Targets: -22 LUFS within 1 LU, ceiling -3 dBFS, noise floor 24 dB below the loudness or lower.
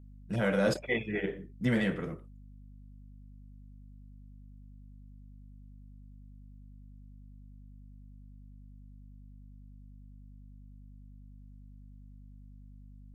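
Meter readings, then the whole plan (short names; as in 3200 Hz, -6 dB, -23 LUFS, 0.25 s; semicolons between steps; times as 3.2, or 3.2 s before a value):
hum 50 Hz; harmonics up to 250 Hz; hum level -48 dBFS; loudness -31.5 LUFS; peak -16.5 dBFS; loudness target -22.0 LUFS
-> de-hum 50 Hz, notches 5; gain +9.5 dB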